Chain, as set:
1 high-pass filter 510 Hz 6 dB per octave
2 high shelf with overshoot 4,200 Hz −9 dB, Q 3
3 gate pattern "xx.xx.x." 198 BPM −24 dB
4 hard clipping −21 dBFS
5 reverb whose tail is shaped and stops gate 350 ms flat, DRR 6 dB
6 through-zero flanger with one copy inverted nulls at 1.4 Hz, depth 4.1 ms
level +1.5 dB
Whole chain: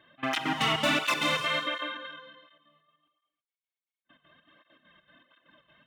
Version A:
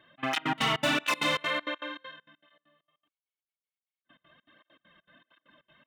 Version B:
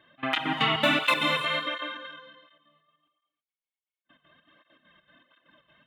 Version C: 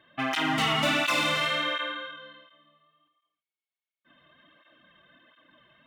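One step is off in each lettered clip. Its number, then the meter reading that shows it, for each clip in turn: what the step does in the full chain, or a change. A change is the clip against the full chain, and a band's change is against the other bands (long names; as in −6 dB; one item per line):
5, change in momentary loudness spread −1 LU
4, distortion level −10 dB
3, change in momentary loudness spread −1 LU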